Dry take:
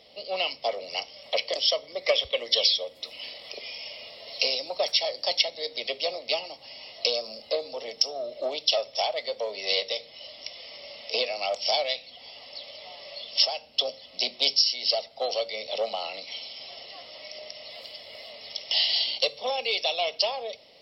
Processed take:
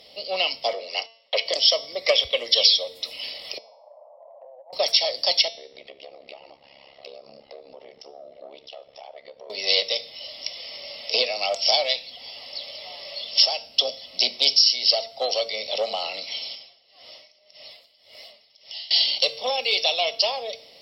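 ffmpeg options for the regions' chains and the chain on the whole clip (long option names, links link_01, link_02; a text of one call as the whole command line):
ffmpeg -i in.wav -filter_complex "[0:a]asettb=1/sr,asplit=3[link_01][link_02][link_03];[link_01]atrim=end=0.734[link_04];[link_02]atrim=start=0.73:end=1.46,asetpts=PTS-STARTPTS,afade=type=in:duration=0.004:curve=qsin,afade=type=out:start_time=0.726:duration=0.004:curve=qsin,agate=range=-20dB:threshold=-43dB:ratio=16:release=100:detection=peak,highpass=370,lowpass=4400,afreqshift=-20[link_05];[link_03]atrim=start=1.456[link_06];[link_04][link_05]acrossfade=duration=0.004:curve1=hsin:curve2=qsin[link_07];[link_07][link_06]acrossfade=duration=0.004:curve1=qsin:curve2=hsin,asettb=1/sr,asplit=3[link_08][link_09][link_10];[link_08]atrim=end=3.584[link_11];[link_09]atrim=start=3.58:end=4.73,asetpts=PTS-STARTPTS,afade=type=in:duration=0.004:curve=qsin,afade=type=out:start_time=1.146:duration=0.004:curve=qsin,asuperpass=centerf=740:order=8:qfactor=1.6,acompressor=threshold=-45dB:ratio=6:attack=3.2:release=140:knee=1:detection=peak[link_12];[link_10]atrim=start=4.726[link_13];[link_11][link_12]acrossfade=duration=0.004:curve1=hsin:curve2=qsin[link_14];[link_14][link_13]acrossfade=duration=0.004:curve1=qsin:curve2=hsin,asettb=1/sr,asplit=3[link_15][link_16][link_17];[link_15]atrim=end=5.484[link_18];[link_16]atrim=start=5.48:end=9.5,asetpts=PTS-STARTPTS,afade=type=in:duration=0.004:curve=qsin,afade=type=out:start_time=4.016:duration=0.004:curve=qsin,lowpass=1900,acompressor=threshold=-42dB:ratio=3:attack=3.2:release=140:knee=1:detection=peak,tremolo=f=69:d=0.947[link_19];[link_17]atrim=start=9.496[link_20];[link_18][link_19]acrossfade=duration=0.004:curve1=hsin:curve2=qsin[link_21];[link_21][link_20]acrossfade=duration=0.004:curve1=qsin:curve2=hsin,asettb=1/sr,asplit=3[link_22][link_23][link_24];[link_22]atrim=end=16.554[link_25];[link_23]atrim=start=16.55:end=18.91,asetpts=PTS-STARTPTS,afade=type=in:duration=0.004:curve=qsin,afade=type=out:start_time=2.356:duration=0.004:curve=qsin,flanger=delay=4.9:depth=7.2:regen=68:speed=1.1:shape=sinusoidal,acompressor=threshold=-44dB:ratio=2.5:attack=3.2:release=140:knee=1:detection=peak,aeval=exprs='val(0)*pow(10,-19*(0.5-0.5*cos(2*PI*1.8*n/s))/20)':channel_layout=same[link_26];[link_24]atrim=start=18.906[link_27];[link_25][link_26]acrossfade=duration=0.004:curve1=hsin:curve2=qsin[link_28];[link_28][link_27]acrossfade=duration=0.004:curve1=qsin:curve2=hsin,aemphasis=mode=production:type=cd,bandreject=frequency=226.6:width_type=h:width=4,bandreject=frequency=453.2:width_type=h:width=4,bandreject=frequency=679.8:width_type=h:width=4,bandreject=frequency=906.4:width_type=h:width=4,bandreject=frequency=1133:width_type=h:width=4,bandreject=frequency=1359.6:width_type=h:width=4,bandreject=frequency=1586.2:width_type=h:width=4,bandreject=frequency=1812.8:width_type=h:width=4,bandreject=frequency=2039.4:width_type=h:width=4,bandreject=frequency=2266:width_type=h:width=4,bandreject=frequency=2492.6:width_type=h:width=4,bandreject=frequency=2719.2:width_type=h:width=4,bandreject=frequency=2945.8:width_type=h:width=4,bandreject=frequency=3172.4:width_type=h:width=4,bandreject=frequency=3399:width_type=h:width=4,bandreject=frequency=3625.6:width_type=h:width=4,bandreject=frequency=3852.2:width_type=h:width=4,bandreject=frequency=4078.8:width_type=h:width=4,bandreject=frequency=4305.4:width_type=h:width=4,bandreject=frequency=4532:width_type=h:width=4,bandreject=frequency=4758.6:width_type=h:width=4,bandreject=frequency=4985.2:width_type=h:width=4,bandreject=frequency=5211.8:width_type=h:width=4,bandreject=frequency=5438.4:width_type=h:width=4,bandreject=frequency=5665:width_type=h:width=4,bandreject=frequency=5891.6:width_type=h:width=4,bandreject=frequency=6118.2:width_type=h:width=4,alimiter=level_in=7dB:limit=-1dB:release=50:level=0:latency=1,volume=-4dB" out.wav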